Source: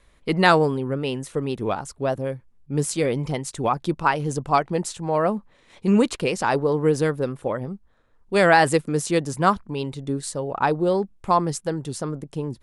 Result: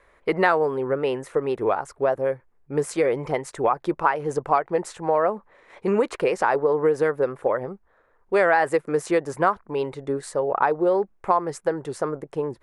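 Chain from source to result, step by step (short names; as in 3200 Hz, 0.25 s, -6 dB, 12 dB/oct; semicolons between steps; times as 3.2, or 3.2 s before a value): band shelf 890 Hz +13.5 dB 3 oct; compressor 3:1, threshold -11 dBFS, peak gain reduction 10.5 dB; gain -7 dB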